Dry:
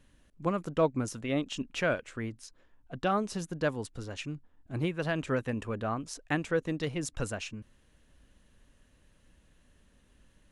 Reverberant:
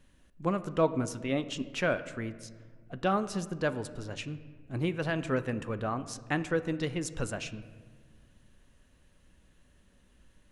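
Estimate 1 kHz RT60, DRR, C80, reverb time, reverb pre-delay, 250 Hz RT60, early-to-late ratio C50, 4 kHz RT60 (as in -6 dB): 1.4 s, 11.0 dB, 15.5 dB, 1.6 s, 5 ms, 2.2 s, 14.5 dB, 0.95 s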